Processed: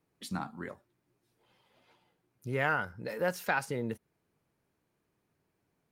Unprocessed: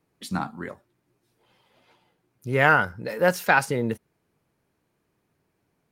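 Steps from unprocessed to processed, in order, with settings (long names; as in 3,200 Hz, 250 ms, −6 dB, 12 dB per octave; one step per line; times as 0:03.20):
downward compressor 1.5 to 1, threshold −30 dBFS, peak gain reduction 6.5 dB
level −5.5 dB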